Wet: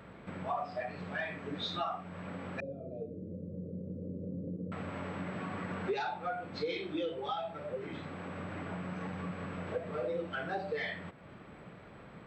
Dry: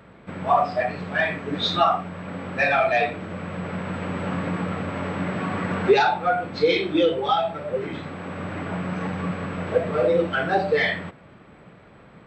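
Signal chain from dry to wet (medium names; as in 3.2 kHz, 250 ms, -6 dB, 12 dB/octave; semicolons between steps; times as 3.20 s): 2.60–4.72 s: elliptic low-pass 520 Hz, stop band 40 dB; compression 2:1, threshold -41 dBFS, peak gain reduction 16 dB; trim -3 dB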